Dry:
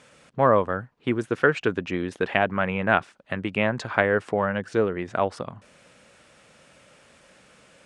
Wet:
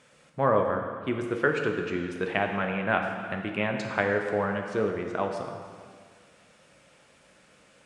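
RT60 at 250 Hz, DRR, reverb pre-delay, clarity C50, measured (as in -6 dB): 1.8 s, 3.0 dB, 4 ms, 4.5 dB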